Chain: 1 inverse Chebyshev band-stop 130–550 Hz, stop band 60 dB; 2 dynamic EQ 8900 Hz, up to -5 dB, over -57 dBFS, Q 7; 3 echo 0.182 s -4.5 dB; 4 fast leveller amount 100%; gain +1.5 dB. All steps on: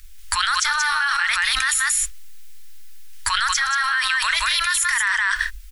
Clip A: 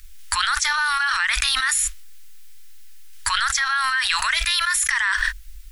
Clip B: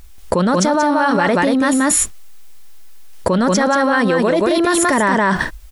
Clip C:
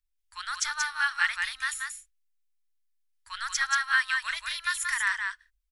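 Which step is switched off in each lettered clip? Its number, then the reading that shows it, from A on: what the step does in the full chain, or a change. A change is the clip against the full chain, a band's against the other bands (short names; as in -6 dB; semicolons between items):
3, momentary loudness spread change +2 LU; 1, 1 kHz band +8.5 dB; 4, crest factor change +2.5 dB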